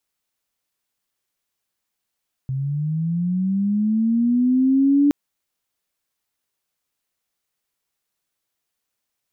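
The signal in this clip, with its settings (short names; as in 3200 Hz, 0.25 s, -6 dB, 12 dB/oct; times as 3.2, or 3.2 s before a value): chirp linear 130 Hz -> 290 Hz -21.5 dBFS -> -12 dBFS 2.62 s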